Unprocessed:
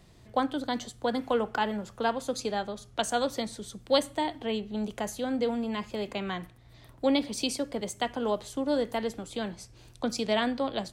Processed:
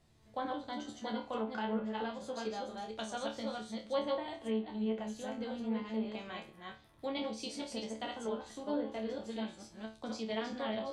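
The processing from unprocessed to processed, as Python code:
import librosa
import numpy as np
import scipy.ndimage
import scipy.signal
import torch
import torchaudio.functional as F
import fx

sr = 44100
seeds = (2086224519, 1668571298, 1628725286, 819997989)

y = fx.reverse_delay(x, sr, ms=224, wet_db=-1.5)
y = fx.hum_notches(y, sr, base_hz=60, count=2)
y = fx.resonator_bank(y, sr, root=38, chord='fifth', decay_s=0.31)
y = fx.env_lowpass_down(y, sr, base_hz=2500.0, full_db=-30.5)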